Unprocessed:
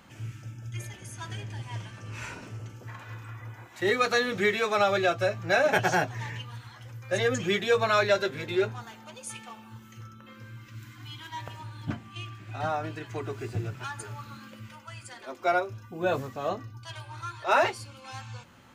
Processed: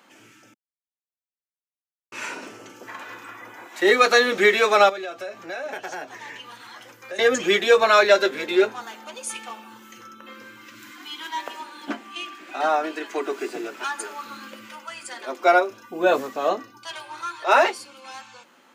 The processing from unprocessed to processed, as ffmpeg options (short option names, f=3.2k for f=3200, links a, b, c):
-filter_complex "[0:a]asettb=1/sr,asplit=3[a][b][c];[a]atrim=end=4.894[d];[b]atrim=start=4.89:end=7.19,asetpts=PTS-STARTPTS,afade=t=in:d=0.004:c=qsin,afade=t=out:st=2.296:d=0.004:c=qsin,acompressor=threshold=-39dB:ratio=5:attack=3.2:release=140:knee=1:detection=peak[e];[c]atrim=start=7.186[f];[d][e]acrossfade=d=0.004:c1=hsin:c2=qsin[g];[g][f]acrossfade=d=0.004:c1=qsin:c2=hsin,asettb=1/sr,asplit=3[h][i][j];[h]atrim=end=10.904[k];[i]atrim=start=10.9:end=14.25,asetpts=PTS-STARTPTS,afade=t=in:d=0.004:c=qsin,afade=t=out:st=3.346:d=0.004:c=qsin,highpass=f=220:w=0.5412,highpass=f=220:w=1.3066[l];[j]atrim=start=14.246[m];[k][l]acrossfade=d=0.004:c1=hsin:c2=qsin[n];[n][m]acrossfade=d=0.004:c1=qsin:c2=hsin,asplit=3[o][p][q];[o]atrim=end=0.54,asetpts=PTS-STARTPTS,afade=t=out:st=0.536:d=0.004:c=hsin[r];[p]atrim=start=0.54:end=2.12,asetpts=PTS-STARTPTS,volume=0[s];[q]atrim=start=2.12,asetpts=PTS-STARTPTS,afade=t=in:d=0.004:c=hsin[t];[r][s][t]concat=n=3:v=0:a=1,highpass=f=260:w=0.5412,highpass=f=260:w=1.3066,dynaudnorm=f=390:g=9:m=8dB,volume=1dB"